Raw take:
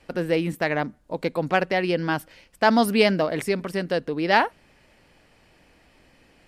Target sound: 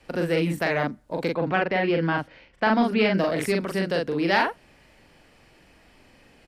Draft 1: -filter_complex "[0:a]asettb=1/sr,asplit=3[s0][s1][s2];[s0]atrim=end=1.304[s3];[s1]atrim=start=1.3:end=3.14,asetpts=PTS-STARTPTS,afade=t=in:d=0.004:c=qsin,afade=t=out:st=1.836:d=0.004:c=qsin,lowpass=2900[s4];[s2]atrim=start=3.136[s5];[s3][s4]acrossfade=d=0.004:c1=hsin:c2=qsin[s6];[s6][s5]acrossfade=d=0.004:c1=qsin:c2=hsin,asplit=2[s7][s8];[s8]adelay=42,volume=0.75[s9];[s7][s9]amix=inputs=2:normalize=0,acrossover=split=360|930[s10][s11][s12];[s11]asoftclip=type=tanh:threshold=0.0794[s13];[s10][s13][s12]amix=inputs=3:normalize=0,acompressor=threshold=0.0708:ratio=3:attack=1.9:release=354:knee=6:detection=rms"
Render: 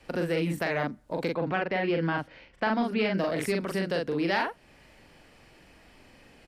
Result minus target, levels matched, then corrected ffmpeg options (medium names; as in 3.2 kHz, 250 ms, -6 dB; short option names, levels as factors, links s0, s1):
compression: peak gain reduction +6.5 dB
-filter_complex "[0:a]asettb=1/sr,asplit=3[s0][s1][s2];[s0]atrim=end=1.304[s3];[s1]atrim=start=1.3:end=3.14,asetpts=PTS-STARTPTS,afade=t=in:d=0.004:c=qsin,afade=t=out:st=1.836:d=0.004:c=qsin,lowpass=2900[s4];[s2]atrim=start=3.136[s5];[s3][s4]acrossfade=d=0.004:c1=hsin:c2=qsin[s6];[s6][s5]acrossfade=d=0.004:c1=qsin:c2=hsin,asplit=2[s7][s8];[s8]adelay=42,volume=0.75[s9];[s7][s9]amix=inputs=2:normalize=0,acrossover=split=360|930[s10][s11][s12];[s11]asoftclip=type=tanh:threshold=0.0794[s13];[s10][s13][s12]amix=inputs=3:normalize=0,acompressor=threshold=0.224:ratio=3:attack=1.9:release=354:knee=6:detection=rms"